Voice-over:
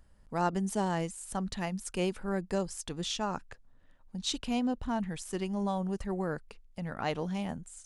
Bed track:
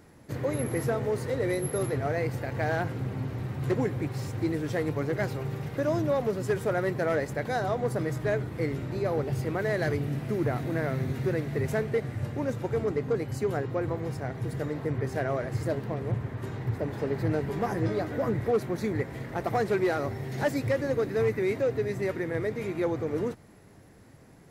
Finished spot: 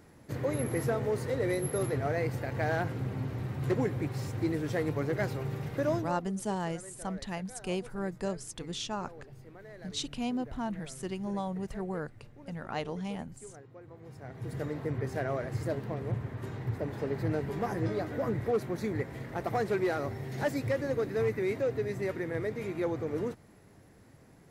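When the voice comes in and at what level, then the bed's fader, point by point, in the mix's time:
5.70 s, −2.5 dB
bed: 0:05.94 −2 dB
0:06.24 −21 dB
0:13.86 −21 dB
0:14.57 −3.5 dB

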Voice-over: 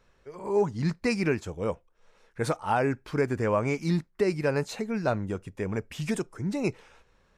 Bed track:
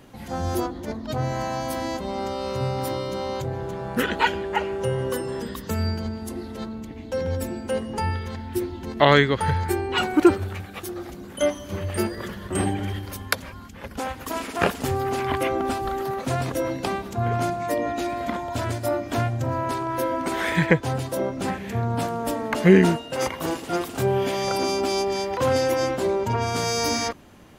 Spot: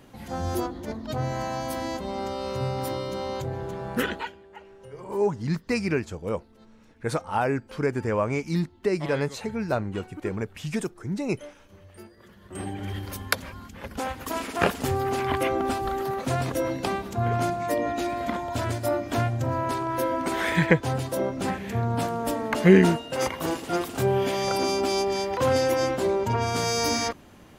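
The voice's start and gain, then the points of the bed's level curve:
4.65 s, +0.5 dB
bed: 0:04.08 −2.5 dB
0:04.36 −21.5 dB
0:12.16 −21.5 dB
0:13.02 −1 dB

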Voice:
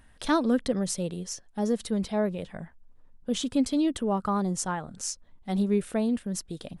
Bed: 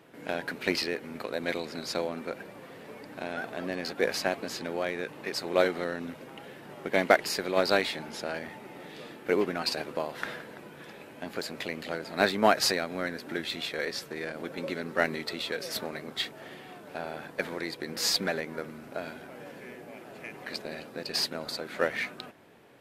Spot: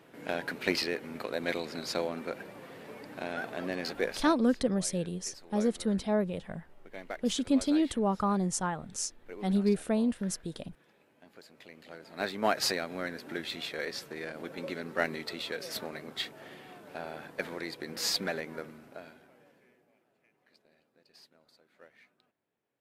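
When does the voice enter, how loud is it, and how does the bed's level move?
3.95 s, −1.5 dB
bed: 0:03.95 −1 dB
0:04.44 −19 dB
0:11.51 −19 dB
0:12.65 −3.5 dB
0:18.57 −3.5 dB
0:20.21 −29 dB

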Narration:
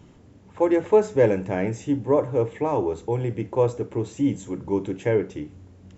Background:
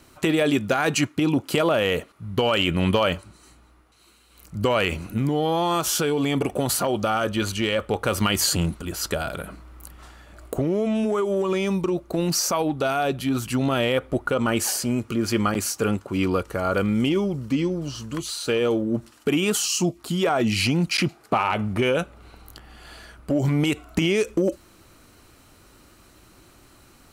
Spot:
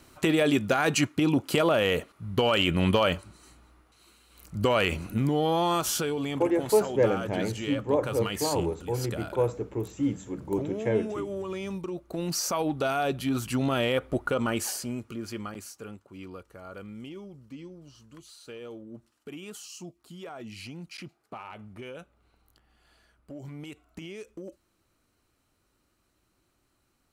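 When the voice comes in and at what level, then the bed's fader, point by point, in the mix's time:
5.80 s, −5.0 dB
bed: 0:05.68 −2.5 dB
0:06.55 −11 dB
0:11.88 −11 dB
0:12.69 −4 dB
0:14.33 −4 dB
0:15.97 −20 dB

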